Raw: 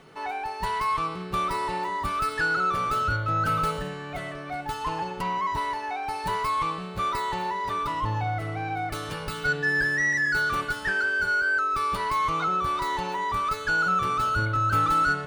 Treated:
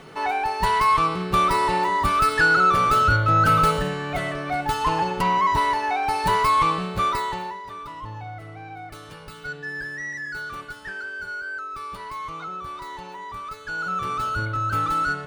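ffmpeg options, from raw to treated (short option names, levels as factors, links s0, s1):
-af "volume=5.31,afade=t=out:st=6.81:d=0.59:silence=0.375837,afade=t=out:st=7.4:d=0.23:silence=0.446684,afade=t=in:st=13.64:d=0.48:silence=0.446684"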